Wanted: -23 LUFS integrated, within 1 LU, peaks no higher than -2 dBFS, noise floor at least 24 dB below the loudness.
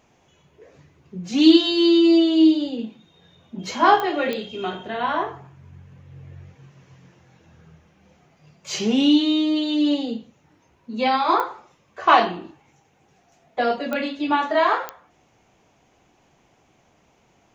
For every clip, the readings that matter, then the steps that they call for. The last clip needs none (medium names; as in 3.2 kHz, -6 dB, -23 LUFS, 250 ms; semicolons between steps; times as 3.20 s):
clicks found 5; loudness -20.0 LUFS; peak level -2.5 dBFS; loudness target -23.0 LUFS
-> de-click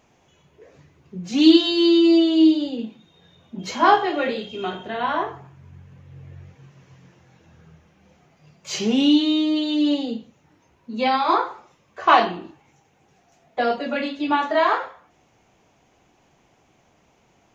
clicks found 0; loudness -20.0 LUFS; peak level -2.5 dBFS; loudness target -23.0 LUFS
-> trim -3 dB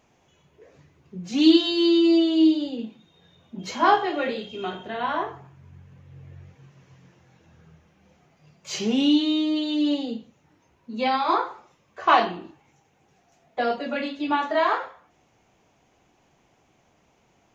loudness -23.0 LUFS; peak level -5.5 dBFS; noise floor -64 dBFS